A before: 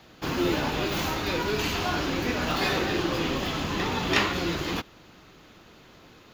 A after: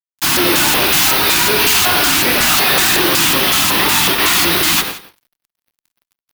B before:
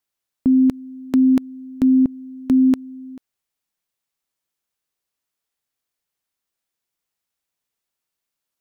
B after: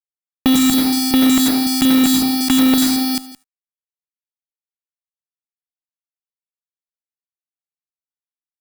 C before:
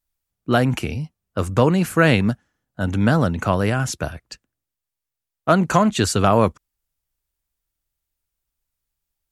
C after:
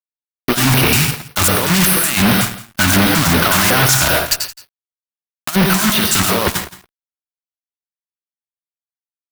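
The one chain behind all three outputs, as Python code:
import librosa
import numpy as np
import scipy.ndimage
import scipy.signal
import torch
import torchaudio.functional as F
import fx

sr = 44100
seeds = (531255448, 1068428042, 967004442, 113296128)

p1 = fx.block_float(x, sr, bits=3)
p2 = fx.tilt_eq(p1, sr, slope=3.0)
p3 = fx.over_compress(p2, sr, threshold_db=-22.0, ratio=-0.5)
p4 = fx.rev_plate(p3, sr, seeds[0], rt60_s=0.66, hf_ratio=0.6, predelay_ms=75, drr_db=6.5)
p5 = fx.fuzz(p4, sr, gain_db=28.0, gate_db=-37.0)
p6 = fx.filter_lfo_notch(p5, sr, shape='square', hz=2.7, low_hz=480.0, high_hz=7300.0, q=1.0)
p7 = p6 + fx.echo_single(p6, sr, ms=170, db=-17.5, dry=0)
y = F.gain(torch.from_numpy(p7), 4.5).numpy()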